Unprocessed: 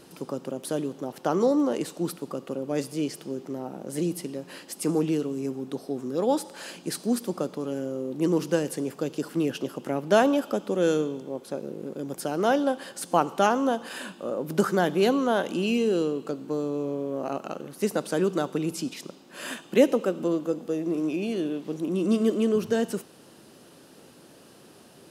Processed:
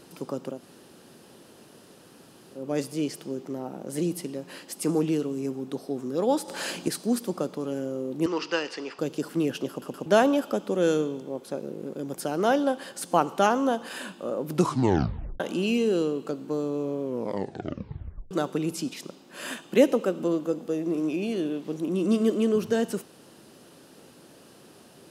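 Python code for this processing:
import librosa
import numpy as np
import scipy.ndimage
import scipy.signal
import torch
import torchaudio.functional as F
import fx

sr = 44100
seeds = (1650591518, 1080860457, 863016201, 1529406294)

y = fx.cabinet(x, sr, low_hz=430.0, low_slope=12, high_hz=5800.0, hz=(570.0, 950.0, 1300.0, 1900.0, 2700.0, 4800.0), db=(-5, 4, 8, 6, 10, 9), at=(8.26, 8.99))
y = fx.edit(y, sr, fx.room_tone_fill(start_s=0.56, length_s=2.03, crossfade_s=0.16),
    fx.clip_gain(start_s=6.48, length_s=0.4, db=7.5),
    fx.stutter_over(start_s=9.7, slice_s=0.12, count=3),
    fx.tape_stop(start_s=14.5, length_s=0.9),
    fx.tape_stop(start_s=17.02, length_s=1.29), tone=tone)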